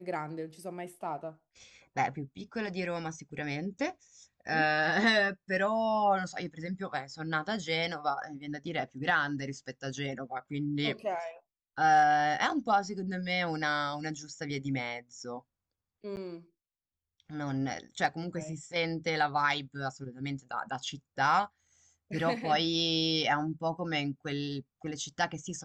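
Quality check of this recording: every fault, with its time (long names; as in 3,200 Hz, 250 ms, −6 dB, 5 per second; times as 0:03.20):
0:16.16–0:16.17: drop-out 9.8 ms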